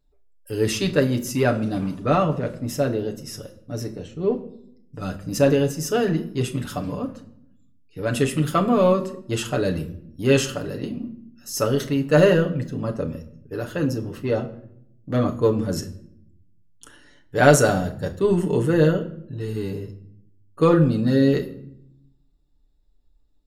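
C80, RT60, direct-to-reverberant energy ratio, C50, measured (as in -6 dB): 17.0 dB, not exponential, 2.0 dB, 14.5 dB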